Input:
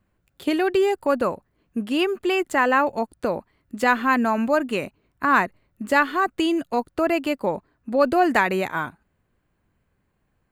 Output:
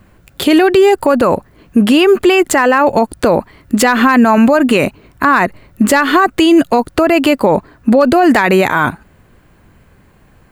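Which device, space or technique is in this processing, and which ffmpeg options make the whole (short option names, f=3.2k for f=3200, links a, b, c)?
loud club master: -af "acompressor=threshold=-23dB:ratio=2.5,asoftclip=type=hard:threshold=-15dB,alimiter=level_in=24dB:limit=-1dB:release=50:level=0:latency=1,volume=-1dB"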